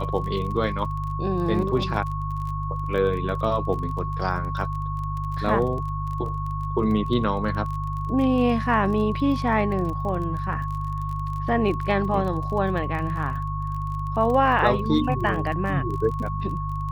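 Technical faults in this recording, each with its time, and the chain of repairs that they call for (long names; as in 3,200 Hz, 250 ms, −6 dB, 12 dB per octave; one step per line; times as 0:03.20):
surface crackle 27 per second −31 dBFS
mains hum 50 Hz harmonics 3 −29 dBFS
whistle 1,100 Hz −31 dBFS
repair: click removal
notch filter 1,100 Hz, Q 30
hum removal 50 Hz, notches 3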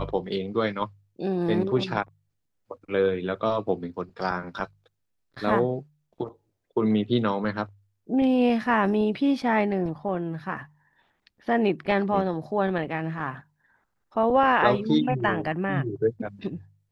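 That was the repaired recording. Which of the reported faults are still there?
none of them is left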